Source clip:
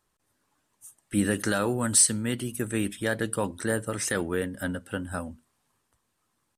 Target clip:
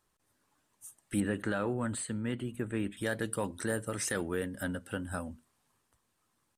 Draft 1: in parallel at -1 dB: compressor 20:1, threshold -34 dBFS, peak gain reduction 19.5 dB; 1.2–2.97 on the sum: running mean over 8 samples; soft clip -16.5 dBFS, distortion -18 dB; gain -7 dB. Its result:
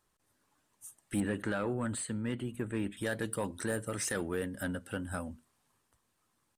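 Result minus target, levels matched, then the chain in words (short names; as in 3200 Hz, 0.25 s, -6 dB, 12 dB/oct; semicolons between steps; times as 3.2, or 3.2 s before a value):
soft clip: distortion +10 dB
in parallel at -1 dB: compressor 20:1, threshold -34 dBFS, peak gain reduction 19.5 dB; 1.2–2.97 on the sum: running mean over 8 samples; soft clip -10 dBFS, distortion -28 dB; gain -7 dB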